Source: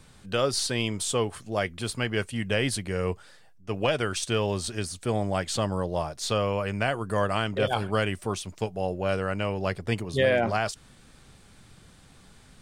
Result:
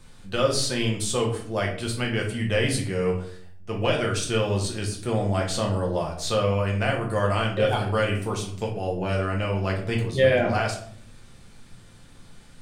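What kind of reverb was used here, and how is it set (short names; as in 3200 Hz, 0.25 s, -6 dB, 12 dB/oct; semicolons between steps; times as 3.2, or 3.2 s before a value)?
shoebox room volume 71 m³, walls mixed, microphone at 0.81 m; gain -1.5 dB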